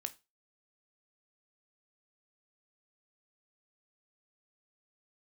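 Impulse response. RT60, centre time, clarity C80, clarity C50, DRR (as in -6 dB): 0.25 s, 4 ms, 26.0 dB, 19.5 dB, 9.0 dB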